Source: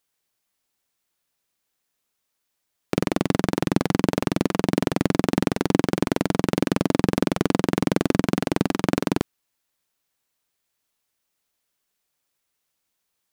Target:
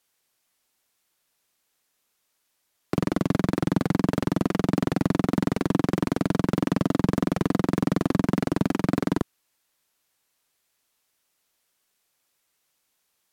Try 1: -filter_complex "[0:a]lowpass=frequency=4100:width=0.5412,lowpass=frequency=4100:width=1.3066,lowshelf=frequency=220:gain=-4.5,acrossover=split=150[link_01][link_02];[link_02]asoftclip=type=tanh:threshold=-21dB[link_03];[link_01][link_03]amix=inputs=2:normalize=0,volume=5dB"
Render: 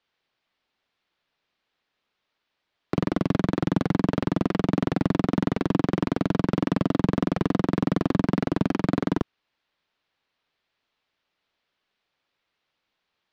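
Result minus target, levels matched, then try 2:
8,000 Hz band −7.0 dB
-filter_complex "[0:a]lowpass=frequency=16000:width=0.5412,lowpass=frequency=16000:width=1.3066,lowshelf=frequency=220:gain=-4.5,acrossover=split=150[link_01][link_02];[link_02]asoftclip=type=tanh:threshold=-21dB[link_03];[link_01][link_03]amix=inputs=2:normalize=0,volume=5dB"

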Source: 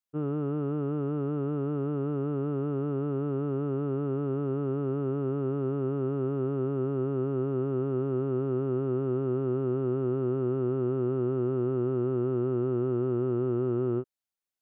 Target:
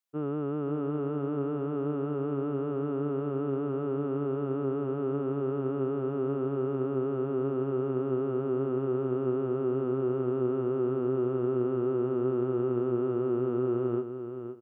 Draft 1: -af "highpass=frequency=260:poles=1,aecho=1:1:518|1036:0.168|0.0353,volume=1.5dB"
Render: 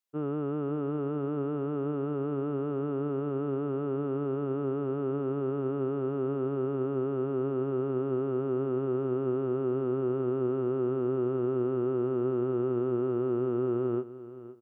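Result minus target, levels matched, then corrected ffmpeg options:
echo-to-direct −6.5 dB
-af "highpass=frequency=260:poles=1,aecho=1:1:518|1036|1554:0.355|0.0745|0.0156,volume=1.5dB"

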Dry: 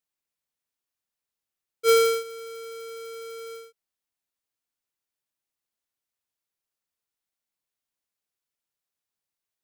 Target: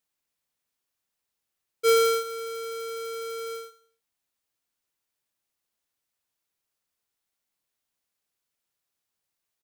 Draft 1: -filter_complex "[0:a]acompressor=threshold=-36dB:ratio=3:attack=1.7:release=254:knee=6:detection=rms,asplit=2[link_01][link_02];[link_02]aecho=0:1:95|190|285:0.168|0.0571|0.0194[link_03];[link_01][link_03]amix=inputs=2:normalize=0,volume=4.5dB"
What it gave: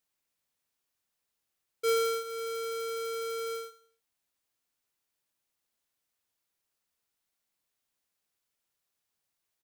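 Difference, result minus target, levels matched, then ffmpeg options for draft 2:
downward compressor: peak gain reduction +7.5 dB
-filter_complex "[0:a]acompressor=threshold=-25dB:ratio=3:attack=1.7:release=254:knee=6:detection=rms,asplit=2[link_01][link_02];[link_02]aecho=0:1:95|190|285:0.168|0.0571|0.0194[link_03];[link_01][link_03]amix=inputs=2:normalize=0,volume=4.5dB"

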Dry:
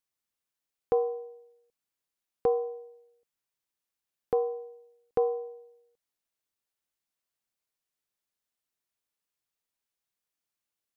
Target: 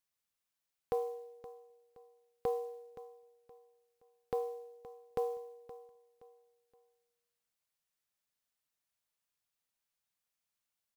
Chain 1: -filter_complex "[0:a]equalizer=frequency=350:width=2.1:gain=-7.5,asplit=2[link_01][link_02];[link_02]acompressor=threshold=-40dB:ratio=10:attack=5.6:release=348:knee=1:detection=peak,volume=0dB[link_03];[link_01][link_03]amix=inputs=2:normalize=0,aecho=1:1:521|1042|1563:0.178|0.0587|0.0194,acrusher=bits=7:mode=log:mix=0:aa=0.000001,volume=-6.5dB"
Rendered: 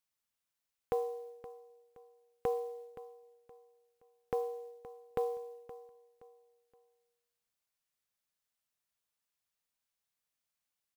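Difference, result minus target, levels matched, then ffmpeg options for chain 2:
downward compressor: peak gain reduction −10.5 dB
-filter_complex "[0:a]equalizer=frequency=350:width=2.1:gain=-7.5,asplit=2[link_01][link_02];[link_02]acompressor=threshold=-51.5dB:ratio=10:attack=5.6:release=348:knee=1:detection=peak,volume=0dB[link_03];[link_01][link_03]amix=inputs=2:normalize=0,aecho=1:1:521|1042|1563:0.178|0.0587|0.0194,acrusher=bits=7:mode=log:mix=0:aa=0.000001,volume=-6.5dB"

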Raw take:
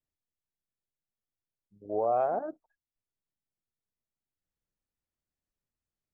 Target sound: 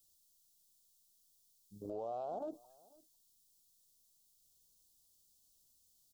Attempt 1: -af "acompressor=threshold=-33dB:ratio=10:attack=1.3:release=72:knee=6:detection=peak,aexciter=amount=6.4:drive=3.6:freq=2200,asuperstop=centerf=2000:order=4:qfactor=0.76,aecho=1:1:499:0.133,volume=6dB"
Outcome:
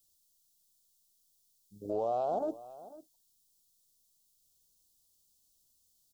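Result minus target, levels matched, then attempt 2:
downward compressor: peak gain reduction −9.5 dB; echo-to-direct +7 dB
-af "acompressor=threshold=-43.5dB:ratio=10:attack=1.3:release=72:knee=6:detection=peak,aexciter=amount=6.4:drive=3.6:freq=2200,asuperstop=centerf=2000:order=4:qfactor=0.76,aecho=1:1:499:0.0596,volume=6dB"

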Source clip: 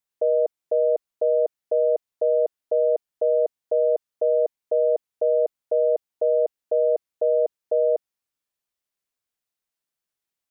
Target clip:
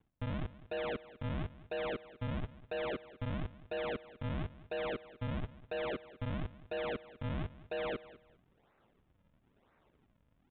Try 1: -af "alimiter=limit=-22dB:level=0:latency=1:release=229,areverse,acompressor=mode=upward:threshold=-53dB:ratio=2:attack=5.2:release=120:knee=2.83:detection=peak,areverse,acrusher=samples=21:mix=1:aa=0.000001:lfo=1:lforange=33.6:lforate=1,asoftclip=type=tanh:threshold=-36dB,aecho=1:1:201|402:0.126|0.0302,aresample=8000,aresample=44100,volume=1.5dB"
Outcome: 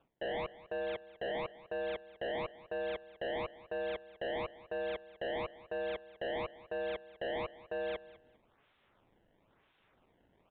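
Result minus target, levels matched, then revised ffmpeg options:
sample-and-hold swept by an LFO: distortion −7 dB
-af "alimiter=limit=-22dB:level=0:latency=1:release=229,areverse,acompressor=mode=upward:threshold=-53dB:ratio=2:attack=5.2:release=120:knee=2.83:detection=peak,areverse,acrusher=samples=66:mix=1:aa=0.000001:lfo=1:lforange=106:lforate=1,asoftclip=type=tanh:threshold=-36dB,aecho=1:1:201|402:0.126|0.0302,aresample=8000,aresample=44100,volume=1.5dB"

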